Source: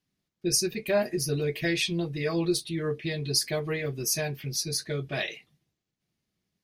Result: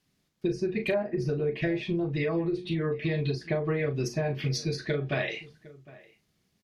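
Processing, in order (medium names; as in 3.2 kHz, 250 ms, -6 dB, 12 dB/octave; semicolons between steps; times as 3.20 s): hum notches 60/120/180/240/300/360 Hz; low-pass that closes with the level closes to 1.2 kHz, closed at -24.5 dBFS; compression 10:1, threshold -33 dBFS, peak gain reduction 13 dB; doubling 38 ms -9 dB; echo from a far wall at 130 m, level -20 dB; trim +8 dB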